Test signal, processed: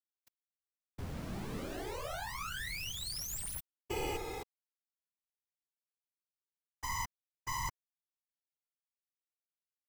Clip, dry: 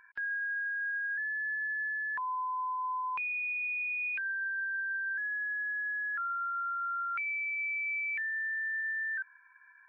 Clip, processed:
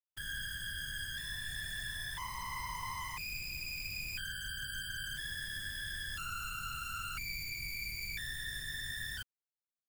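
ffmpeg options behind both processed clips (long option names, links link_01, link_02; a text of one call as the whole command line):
ffmpeg -i in.wav -af "acrusher=bits=3:dc=4:mix=0:aa=0.000001,aeval=exprs='0.075*(cos(1*acos(clip(val(0)/0.075,-1,1)))-cos(1*PI/2))+0.00531*(cos(3*acos(clip(val(0)/0.075,-1,1)))-cos(3*PI/2))+0.00841*(cos(7*acos(clip(val(0)/0.075,-1,1)))-cos(7*PI/2))+0.00668*(cos(8*acos(clip(val(0)/0.075,-1,1)))-cos(8*PI/2))':channel_layout=same,afftfilt=real='hypot(re,im)*cos(2*PI*random(0))':imag='hypot(re,im)*sin(2*PI*random(1))':win_size=512:overlap=0.75,volume=4.5dB" out.wav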